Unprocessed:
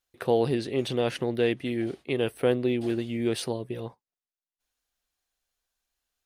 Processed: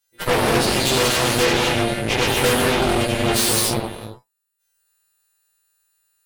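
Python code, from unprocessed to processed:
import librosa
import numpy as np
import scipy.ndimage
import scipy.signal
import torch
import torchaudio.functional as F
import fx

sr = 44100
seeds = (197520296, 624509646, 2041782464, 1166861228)

y = fx.freq_snap(x, sr, grid_st=2)
y = fx.rev_gated(y, sr, seeds[0], gate_ms=310, shape='flat', drr_db=-4.5)
y = fx.cheby_harmonics(y, sr, harmonics=(8,), levels_db=(-8,), full_scale_db=-9.5)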